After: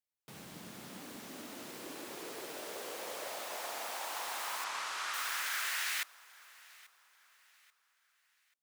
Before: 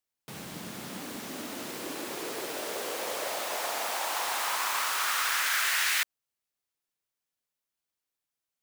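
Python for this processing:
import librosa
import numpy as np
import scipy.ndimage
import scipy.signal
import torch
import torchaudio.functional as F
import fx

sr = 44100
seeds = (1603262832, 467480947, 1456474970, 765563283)

y = fx.lowpass(x, sr, hz=7400.0, slope=12, at=(4.64, 5.14))
y = fx.echo_feedback(y, sr, ms=836, feedback_pct=38, wet_db=-22.0)
y = y * librosa.db_to_amplitude(-8.5)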